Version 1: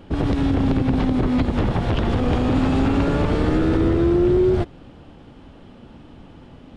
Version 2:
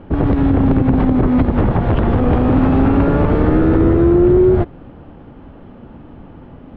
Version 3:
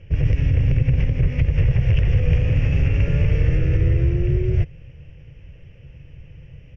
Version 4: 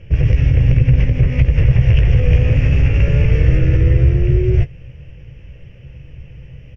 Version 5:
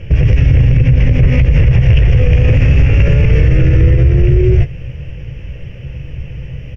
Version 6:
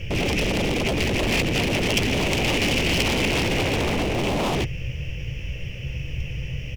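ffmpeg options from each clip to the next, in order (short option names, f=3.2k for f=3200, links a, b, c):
-af "lowpass=1.7k,volume=6dB"
-af "firequalizer=gain_entry='entry(150,0);entry(210,-27);entry(500,-10);entry(770,-26);entry(1300,-22);entry(1900,-2);entry(2700,6);entry(3900,-17);entry(5600,14);entry(8200,-1)':delay=0.05:min_phase=1"
-filter_complex "[0:a]asplit=2[a][b];[b]adelay=16,volume=-9dB[c];[a][c]amix=inputs=2:normalize=0,volume=5dB"
-af "alimiter=level_in=11.5dB:limit=-1dB:release=50:level=0:latency=1,volume=-1dB"
-af "aeval=exprs='0.2*(abs(mod(val(0)/0.2+3,4)-2)-1)':c=same,aexciter=amount=3.2:drive=5.8:freq=2.2k,volume=-4.5dB"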